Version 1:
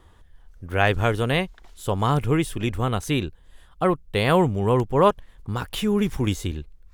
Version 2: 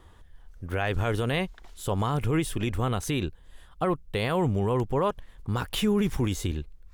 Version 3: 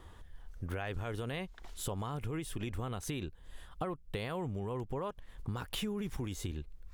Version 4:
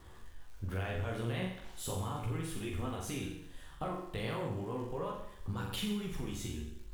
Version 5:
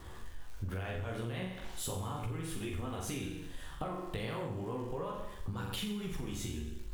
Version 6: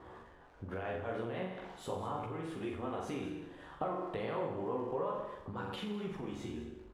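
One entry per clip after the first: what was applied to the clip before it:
limiter -16 dBFS, peak gain reduction 10 dB
compressor 6:1, threshold -35 dBFS, peak gain reduction 14 dB
crackle 180/s -49 dBFS; flutter echo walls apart 7.4 m, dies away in 0.74 s; chorus voices 2, 0.35 Hz, delay 15 ms, depth 4.8 ms; gain +1 dB
compressor, threshold -41 dBFS, peak gain reduction 10 dB; gain +6 dB
band-pass 640 Hz, Q 0.66; echo 0.202 s -14 dB; mismatched tape noise reduction decoder only; gain +4.5 dB

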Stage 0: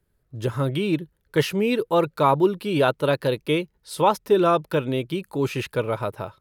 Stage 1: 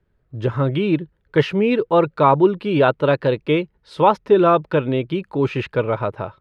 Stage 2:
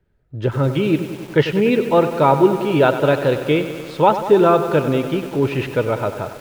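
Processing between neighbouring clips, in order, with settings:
LPF 2800 Hz 12 dB/oct; gain +4.5 dB
notch 1100 Hz, Q 7.4; lo-fi delay 96 ms, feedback 80%, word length 6-bit, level -11 dB; gain +1 dB

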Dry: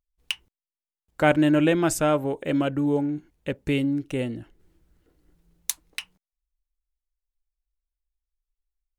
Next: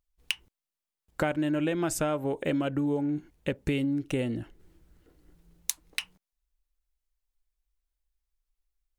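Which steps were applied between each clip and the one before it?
compressor 8:1, threshold -28 dBFS, peak gain reduction 14.5 dB; gain +3 dB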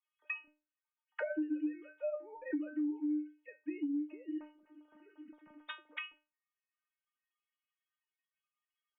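sine-wave speech; metallic resonator 300 Hz, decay 0.27 s, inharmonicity 0.002; three-band squash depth 100%; gain -2 dB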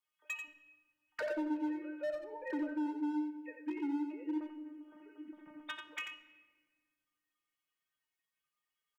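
hard clip -36.5 dBFS, distortion -10 dB; echo 89 ms -7 dB; shoebox room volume 1700 m³, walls mixed, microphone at 0.52 m; gain +2 dB

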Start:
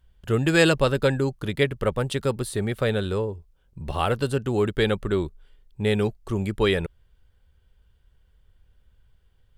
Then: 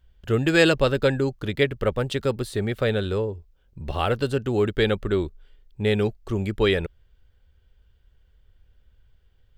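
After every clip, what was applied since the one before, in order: fifteen-band EQ 160 Hz -4 dB, 1000 Hz -4 dB, 10000 Hz -10 dB; gain +1.5 dB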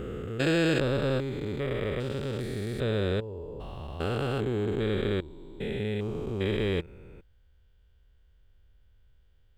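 stepped spectrum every 0.4 s; gain -2 dB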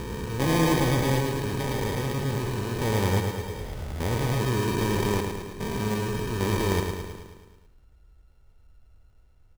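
tone controls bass +4 dB, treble +10 dB; sample-and-hold 32×; feedback echo 0.108 s, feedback 59%, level -5.5 dB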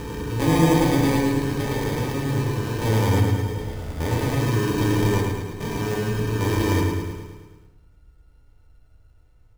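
FDN reverb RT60 0.69 s, low-frequency decay 1.55×, high-frequency decay 0.55×, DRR 1.5 dB

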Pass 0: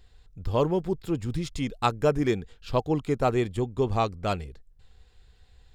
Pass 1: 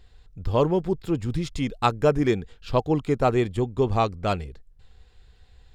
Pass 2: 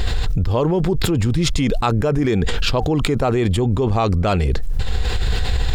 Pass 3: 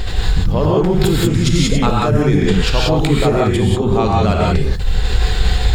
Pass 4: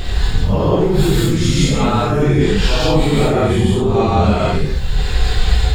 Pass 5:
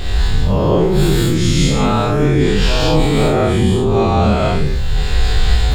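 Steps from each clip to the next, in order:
high shelf 6900 Hz -5.5 dB; gain +3 dB
fast leveller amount 100%; gain -1.5 dB
non-linear reverb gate 0.21 s rising, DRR -3.5 dB; gain -1 dB
phase scrambler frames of 0.2 s
spectral dilation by 60 ms; gain -3 dB

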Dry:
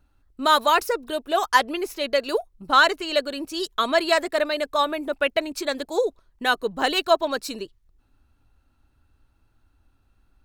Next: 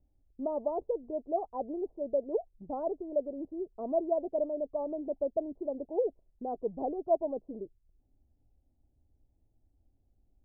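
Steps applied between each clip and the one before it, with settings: steep low-pass 750 Hz 48 dB/oct; gain -7 dB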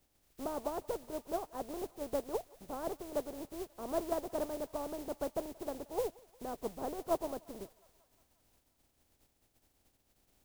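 spectral contrast lowered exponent 0.41; thinning echo 0.178 s, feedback 76%, high-pass 560 Hz, level -22 dB; gain -5 dB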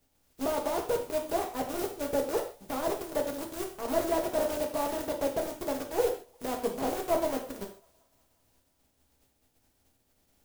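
in parallel at -9 dB: companded quantiser 2-bit; on the sum: non-linear reverb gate 0.17 s falling, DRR 1 dB

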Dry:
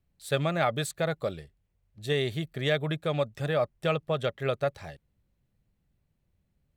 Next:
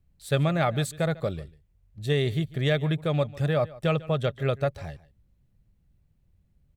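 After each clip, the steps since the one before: low shelf 180 Hz +11 dB; echo 0.147 s -20 dB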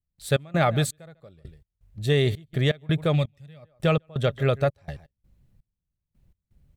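spectral gain 3.15–3.63, 260–1800 Hz -9 dB; in parallel at -3 dB: limiter -19 dBFS, peak gain reduction 7 dB; on the sum: step gate ".x.xx...x.xxx" 83 bpm -24 dB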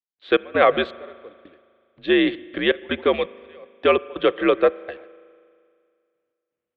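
gate -49 dBFS, range -16 dB; spring tank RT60 2.2 s, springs 39 ms, chirp 70 ms, DRR 20 dB; mistuned SSB -76 Hz 350–3400 Hz; gain +7.5 dB

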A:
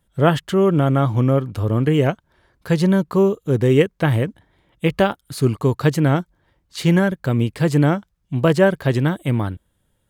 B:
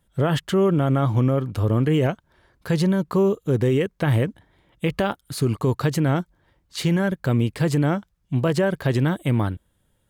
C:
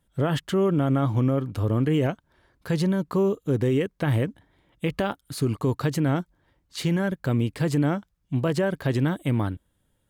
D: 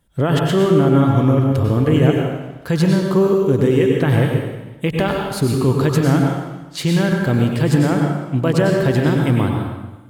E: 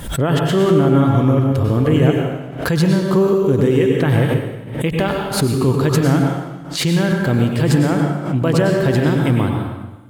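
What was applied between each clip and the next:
limiter -12.5 dBFS, peak gain reduction 10 dB
bell 280 Hz +4.5 dB 0.22 oct; gain -3.5 dB
plate-style reverb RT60 1.1 s, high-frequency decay 0.95×, pre-delay 85 ms, DRR 0.5 dB; gain +6 dB
backwards sustainer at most 84 dB/s

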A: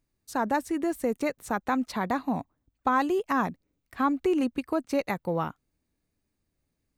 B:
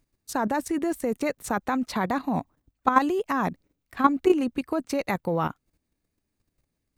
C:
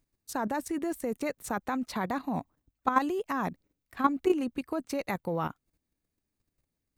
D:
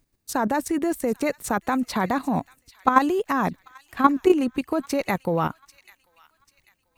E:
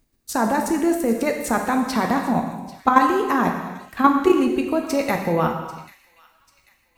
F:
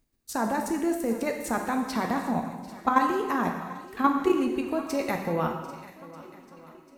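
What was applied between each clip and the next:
level quantiser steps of 11 dB; gain +8.5 dB
high shelf 11000 Hz +4.5 dB; gain -5.5 dB
thin delay 0.791 s, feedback 38%, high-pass 2300 Hz, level -17 dB; gain +8 dB
non-linear reverb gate 0.43 s falling, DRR 2.5 dB; gain +1.5 dB
swung echo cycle 1.239 s, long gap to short 1.5:1, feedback 36%, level -19 dB; gain -7 dB

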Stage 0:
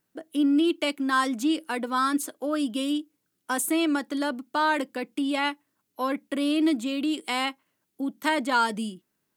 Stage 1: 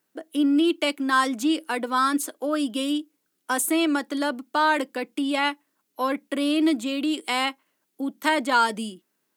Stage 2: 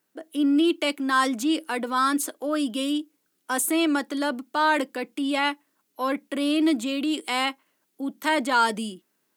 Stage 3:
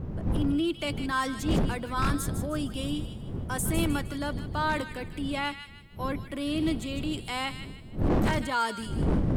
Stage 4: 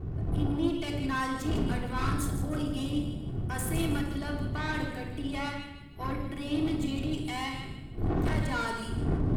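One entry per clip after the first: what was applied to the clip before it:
HPF 240 Hz 12 dB/oct; gain +3 dB
transient shaper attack -3 dB, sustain +2 dB
wind noise 170 Hz -22 dBFS; thin delay 0.155 s, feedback 38%, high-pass 1700 Hz, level -8.5 dB; wavefolder -11 dBFS; gain -7 dB
tube stage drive 27 dB, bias 0.55; reverb RT60 0.85 s, pre-delay 3 ms, DRR 0 dB; gain -2.5 dB

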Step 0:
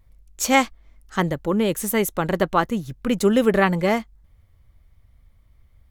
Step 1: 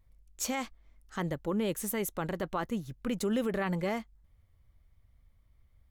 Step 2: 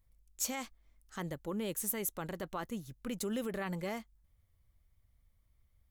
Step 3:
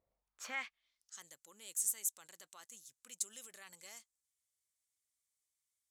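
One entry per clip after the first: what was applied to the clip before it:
limiter -13 dBFS, peak gain reduction 11 dB; gain -9 dB
high shelf 5100 Hz +9.5 dB; gain -6.5 dB
band-pass sweep 560 Hz -> 7600 Hz, 0.04–1.2; gain +7.5 dB

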